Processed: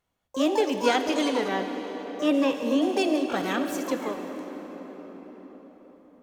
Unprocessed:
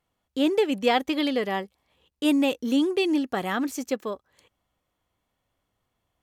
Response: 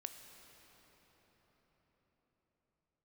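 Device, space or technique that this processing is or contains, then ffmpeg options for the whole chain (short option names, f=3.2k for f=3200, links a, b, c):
shimmer-style reverb: -filter_complex "[0:a]asplit=2[a][b];[b]asetrate=88200,aresample=44100,atempo=0.5,volume=-7dB[c];[a][c]amix=inputs=2:normalize=0[d];[1:a]atrim=start_sample=2205[e];[d][e]afir=irnorm=-1:irlink=0,asettb=1/sr,asplit=3[f][g][h];[f]atrim=end=1.484[i];[g]atrim=start=1.48:end=2.82,asetpts=PTS-STARTPTS,afade=t=in:d=0.004:c=qsin,afade=t=out:st=1.336:d=0.004:c=qsin,acrossover=split=3800[j][k];[k]acompressor=threshold=-50dB:ratio=4:attack=1:release=60[l];[j][l]amix=inputs=2:normalize=0[m];[h]atrim=start=2.816[n];[i][m]acrossfade=d=0.004:c1=hsin:c2=qsin[o];[o][n]acrossfade=d=0.004:c1=qsin:c2=hsin,volume=2.5dB"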